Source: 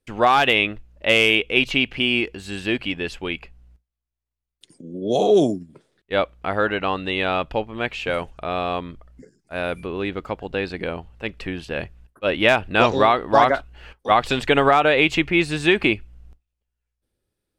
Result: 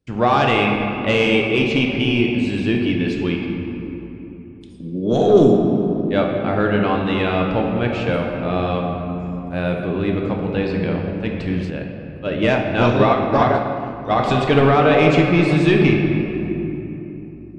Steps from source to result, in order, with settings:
high-pass filter 180 Hz 6 dB per octave
bass and treble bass +14 dB, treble +12 dB
soft clipping −7 dBFS, distortion −17 dB
head-to-tape spacing loss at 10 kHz 24 dB
rectangular room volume 180 cubic metres, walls hard, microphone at 0.45 metres
0:11.70–0:14.19: expander for the loud parts 1.5 to 1, over −24 dBFS
level +1.5 dB

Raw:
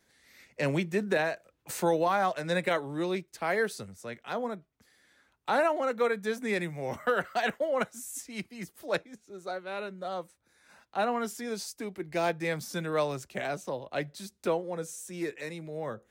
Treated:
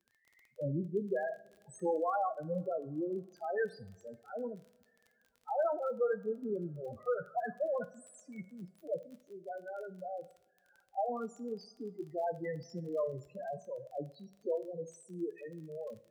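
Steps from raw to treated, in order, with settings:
spectral peaks only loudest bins 4
surface crackle 25 per second −44 dBFS
coupled-rooms reverb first 0.48 s, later 2.8 s, from −22 dB, DRR 11 dB
level −4 dB

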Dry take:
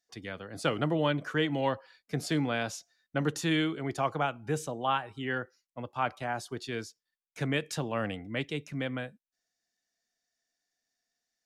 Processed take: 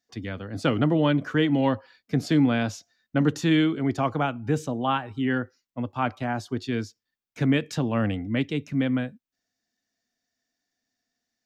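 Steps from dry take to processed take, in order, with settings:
graphic EQ with 15 bands 100 Hz +10 dB, 250 Hz +10 dB, 10,000 Hz −10 dB
level +3 dB

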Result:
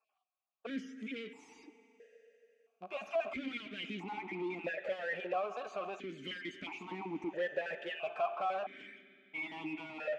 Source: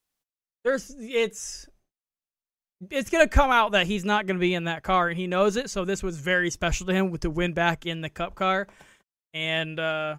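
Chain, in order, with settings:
time-frequency cells dropped at random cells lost 25%
flanger 1.6 Hz, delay 4.4 ms, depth 1.2 ms, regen +54%
in parallel at −4 dB: centre clipping without the shift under −36 dBFS
on the sum: brickwall limiter −16 dBFS, peak gain reduction 8.5 dB
downward compressor, threshold −31 dBFS, peak gain reduction 10.5 dB
on a send at −19 dB: convolution reverb RT60 3.2 s, pre-delay 4 ms
on the sum: dynamic equaliser 970 Hz, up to +3 dB, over −49 dBFS, Q 0.8
mid-hump overdrive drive 28 dB, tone 2,300 Hz, clips at −21 dBFS
formant filter that steps through the vowels 1.5 Hz
level +1.5 dB

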